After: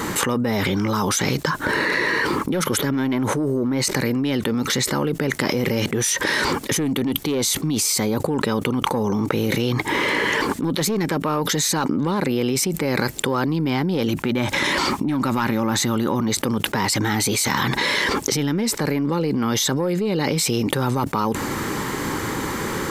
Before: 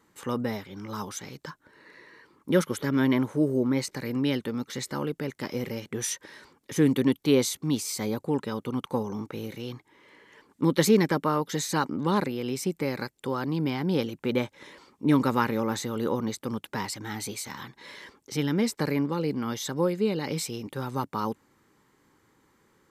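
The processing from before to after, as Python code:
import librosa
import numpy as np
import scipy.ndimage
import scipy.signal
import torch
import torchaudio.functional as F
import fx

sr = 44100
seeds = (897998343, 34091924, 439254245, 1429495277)

y = fx.peak_eq(x, sr, hz=470.0, db=-12.0, octaves=0.25, at=(14.08, 16.28))
y = 10.0 ** (-16.5 / 20.0) * np.tanh(y / 10.0 ** (-16.5 / 20.0))
y = fx.env_flatten(y, sr, amount_pct=100)
y = F.gain(torch.from_numpy(y), -1.0).numpy()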